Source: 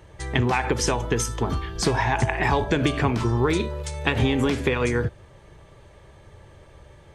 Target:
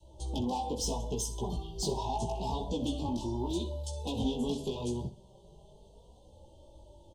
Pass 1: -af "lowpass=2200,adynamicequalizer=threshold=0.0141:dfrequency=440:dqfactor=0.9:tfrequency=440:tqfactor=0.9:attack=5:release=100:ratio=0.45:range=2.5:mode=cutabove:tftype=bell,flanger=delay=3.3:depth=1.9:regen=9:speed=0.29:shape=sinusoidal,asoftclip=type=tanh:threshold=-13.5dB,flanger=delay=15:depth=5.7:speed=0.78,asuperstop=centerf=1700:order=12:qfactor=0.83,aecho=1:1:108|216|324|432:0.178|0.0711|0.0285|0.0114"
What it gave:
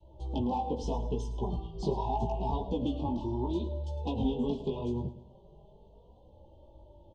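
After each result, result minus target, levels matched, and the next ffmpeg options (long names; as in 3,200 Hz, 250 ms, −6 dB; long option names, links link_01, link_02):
echo 44 ms late; soft clipping: distortion −13 dB; 2,000 Hz band −4.0 dB
-af "lowpass=2200,adynamicequalizer=threshold=0.0141:dfrequency=440:dqfactor=0.9:tfrequency=440:tqfactor=0.9:attack=5:release=100:ratio=0.45:range=2.5:mode=cutabove:tftype=bell,flanger=delay=3.3:depth=1.9:regen=9:speed=0.29:shape=sinusoidal,asoftclip=type=tanh:threshold=-13.5dB,flanger=delay=15:depth=5.7:speed=0.78,asuperstop=centerf=1700:order=12:qfactor=0.83,aecho=1:1:64|128|192|256:0.178|0.0711|0.0285|0.0114"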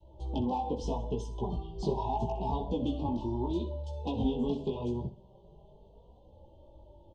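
soft clipping: distortion −13 dB; 2,000 Hz band −3.5 dB
-af "lowpass=2200,adynamicequalizer=threshold=0.0141:dfrequency=440:dqfactor=0.9:tfrequency=440:tqfactor=0.9:attack=5:release=100:ratio=0.45:range=2.5:mode=cutabove:tftype=bell,flanger=delay=3.3:depth=1.9:regen=9:speed=0.29:shape=sinusoidal,asoftclip=type=tanh:threshold=-22dB,flanger=delay=15:depth=5.7:speed=0.78,asuperstop=centerf=1700:order=12:qfactor=0.83,aecho=1:1:64|128|192|256:0.178|0.0711|0.0285|0.0114"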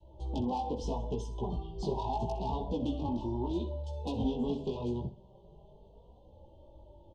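2,000 Hz band −4.0 dB
-af "adynamicequalizer=threshold=0.0141:dfrequency=440:dqfactor=0.9:tfrequency=440:tqfactor=0.9:attack=5:release=100:ratio=0.45:range=2.5:mode=cutabove:tftype=bell,flanger=delay=3.3:depth=1.9:regen=9:speed=0.29:shape=sinusoidal,asoftclip=type=tanh:threshold=-22dB,flanger=delay=15:depth=5.7:speed=0.78,asuperstop=centerf=1700:order=12:qfactor=0.83,aecho=1:1:64|128|192|256:0.178|0.0711|0.0285|0.0114"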